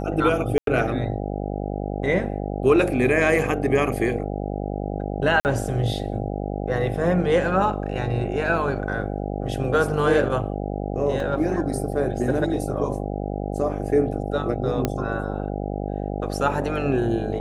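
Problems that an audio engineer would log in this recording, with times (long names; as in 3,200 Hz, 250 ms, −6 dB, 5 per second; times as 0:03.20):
mains buzz 50 Hz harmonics 16 −28 dBFS
0:00.58–0:00.67: drop-out 92 ms
0:05.40–0:05.45: drop-out 49 ms
0:11.20: drop-out 2.4 ms
0:14.85: click −8 dBFS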